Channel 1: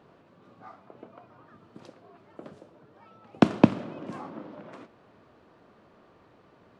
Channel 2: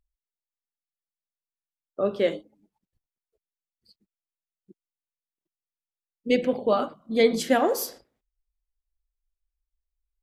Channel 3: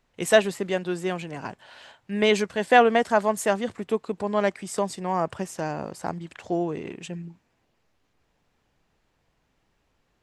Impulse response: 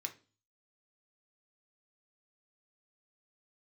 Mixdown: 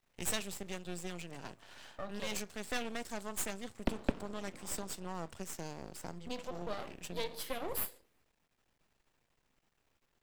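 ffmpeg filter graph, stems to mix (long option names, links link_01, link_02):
-filter_complex "[0:a]adelay=450,volume=-11.5dB[link_01];[1:a]aemphasis=mode=production:type=50kf,acompressor=threshold=-31dB:ratio=3,asplit=2[link_02][link_03];[link_03]afreqshift=-0.25[link_04];[link_02][link_04]amix=inputs=2:normalize=1,volume=-4dB,asplit=3[link_05][link_06][link_07];[link_06]volume=-4.5dB[link_08];[2:a]acrossover=split=150|3000[link_09][link_10][link_11];[link_10]acompressor=threshold=-45dB:ratio=2[link_12];[link_09][link_12][link_11]amix=inputs=3:normalize=0,highshelf=frequency=8600:gain=4,volume=-4.5dB,asplit=2[link_13][link_14];[link_14]volume=-6dB[link_15];[link_07]apad=whole_len=450718[link_16];[link_13][link_16]sidechaincompress=threshold=-44dB:ratio=8:attack=16:release=143[link_17];[3:a]atrim=start_sample=2205[link_18];[link_08][link_15]amix=inputs=2:normalize=0[link_19];[link_19][link_18]afir=irnorm=-1:irlink=0[link_20];[link_01][link_05][link_17][link_20]amix=inputs=4:normalize=0,aeval=exprs='max(val(0),0)':channel_layout=same"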